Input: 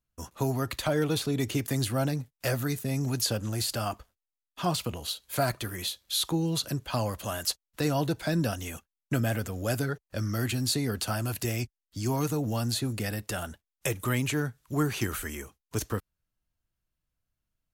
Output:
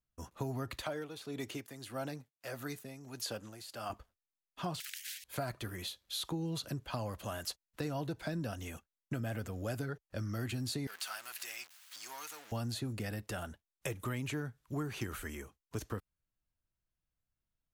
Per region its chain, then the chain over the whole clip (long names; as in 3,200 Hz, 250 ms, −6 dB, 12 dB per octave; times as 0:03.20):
0:00.82–0:03.90: high-pass filter 420 Hz 6 dB per octave + amplitude tremolo 1.6 Hz, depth 66%
0:04.80–0:05.24: Butterworth high-pass 1,900 Hz 72 dB per octave + every bin compressed towards the loudest bin 10 to 1
0:10.87–0:12.52: converter with a step at zero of −32.5 dBFS + high-pass filter 1,500 Hz
whole clip: high-shelf EQ 4,100 Hz −6.5 dB; downward compressor, threshold −28 dBFS; level −5.5 dB